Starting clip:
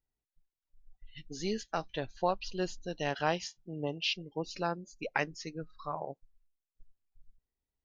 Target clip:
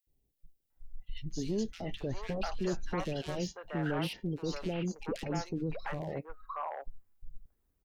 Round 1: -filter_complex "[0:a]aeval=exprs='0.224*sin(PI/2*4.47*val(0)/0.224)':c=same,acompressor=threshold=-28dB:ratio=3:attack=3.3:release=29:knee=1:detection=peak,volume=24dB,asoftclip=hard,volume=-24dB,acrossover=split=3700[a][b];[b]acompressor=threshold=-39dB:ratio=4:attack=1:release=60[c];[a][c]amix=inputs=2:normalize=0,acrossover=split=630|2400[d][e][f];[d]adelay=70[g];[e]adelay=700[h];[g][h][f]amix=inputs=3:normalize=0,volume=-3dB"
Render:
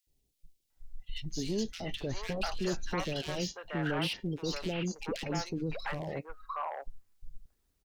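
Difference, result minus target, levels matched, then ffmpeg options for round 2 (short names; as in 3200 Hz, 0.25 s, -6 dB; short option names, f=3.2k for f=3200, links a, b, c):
4000 Hz band +5.5 dB
-filter_complex "[0:a]aeval=exprs='0.224*sin(PI/2*4.47*val(0)/0.224)':c=same,acompressor=threshold=-28dB:ratio=3:attack=3.3:release=29:knee=1:detection=peak,equalizer=f=5.2k:w=0.42:g=-10.5,volume=24dB,asoftclip=hard,volume=-24dB,acrossover=split=3700[a][b];[b]acompressor=threshold=-39dB:ratio=4:attack=1:release=60[c];[a][c]amix=inputs=2:normalize=0,acrossover=split=630|2400[d][e][f];[d]adelay=70[g];[e]adelay=700[h];[g][h][f]amix=inputs=3:normalize=0,volume=-3dB"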